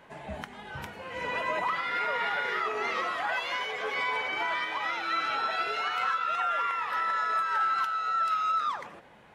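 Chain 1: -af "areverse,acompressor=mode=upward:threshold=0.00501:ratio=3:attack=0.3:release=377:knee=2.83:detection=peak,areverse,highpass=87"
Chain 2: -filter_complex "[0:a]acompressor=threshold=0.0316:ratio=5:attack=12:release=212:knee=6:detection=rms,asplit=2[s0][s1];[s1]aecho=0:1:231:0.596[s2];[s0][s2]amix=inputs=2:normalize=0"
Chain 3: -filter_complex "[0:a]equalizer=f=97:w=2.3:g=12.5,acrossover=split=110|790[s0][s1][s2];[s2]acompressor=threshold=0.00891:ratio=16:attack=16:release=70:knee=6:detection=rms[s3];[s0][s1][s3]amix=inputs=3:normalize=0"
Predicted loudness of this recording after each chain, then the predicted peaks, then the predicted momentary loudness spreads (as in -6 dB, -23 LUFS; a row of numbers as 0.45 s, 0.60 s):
-29.0 LUFS, -32.0 LUFS, -37.5 LUFS; -19.5 dBFS, -21.0 dBFS, -23.0 dBFS; 13 LU, 9 LU, 4 LU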